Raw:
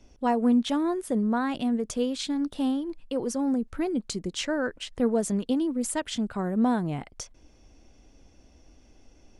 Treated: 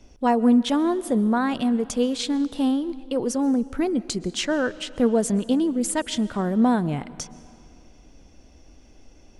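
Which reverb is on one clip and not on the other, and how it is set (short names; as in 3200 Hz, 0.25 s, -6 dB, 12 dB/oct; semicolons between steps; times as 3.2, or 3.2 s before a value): digital reverb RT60 2.5 s, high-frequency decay 0.8×, pre-delay 90 ms, DRR 18 dB; gain +4.5 dB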